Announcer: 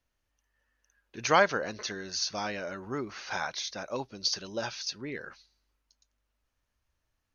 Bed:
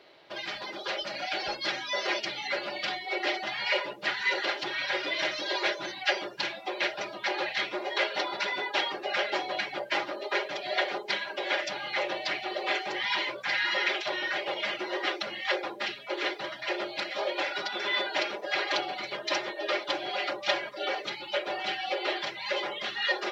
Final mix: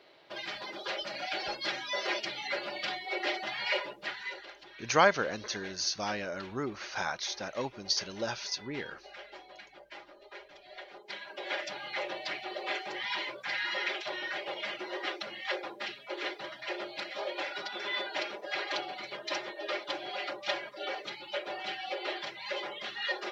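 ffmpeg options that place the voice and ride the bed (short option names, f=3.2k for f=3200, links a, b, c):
-filter_complex "[0:a]adelay=3650,volume=-0.5dB[a];[1:a]volume=10.5dB,afade=t=out:st=3.71:d=0.75:silence=0.158489,afade=t=in:st=10.89:d=0.7:silence=0.211349[b];[a][b]amix=inputs=2:normalize=0"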